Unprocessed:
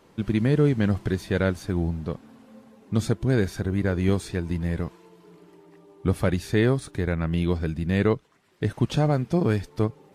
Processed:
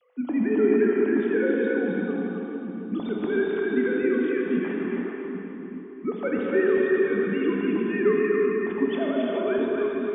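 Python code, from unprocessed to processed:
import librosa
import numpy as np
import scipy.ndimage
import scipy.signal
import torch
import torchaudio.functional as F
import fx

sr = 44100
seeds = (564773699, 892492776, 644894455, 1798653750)

y = fx.sine_speech(x, sr)
y = fx.echo_split(y, sr, split_hz=300.0, low_ms=782, high_ms=269, feedback_pct=52, wet_db=-4.5)
y = fx.rev_gated(y, sr, seeds[0], gate_ms=490, shape='flat', drr_db=-2.0)
y = y * librosa.db_to_amplitude(-5.5)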